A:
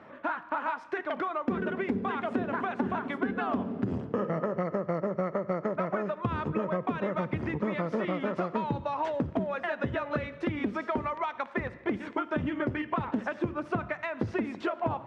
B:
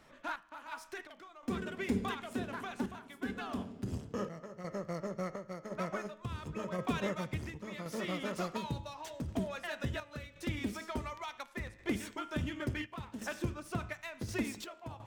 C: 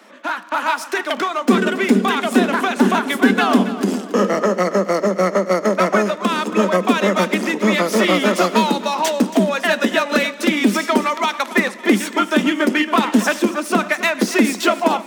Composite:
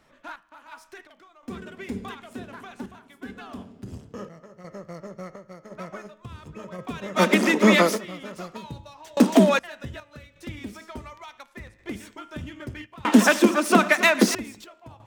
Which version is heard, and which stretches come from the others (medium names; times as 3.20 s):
B
7.18–7.94 s: from C, crossfade 0.10 s
9.17–9.59 s: from C
13.05–14.35 s: from C
not used: A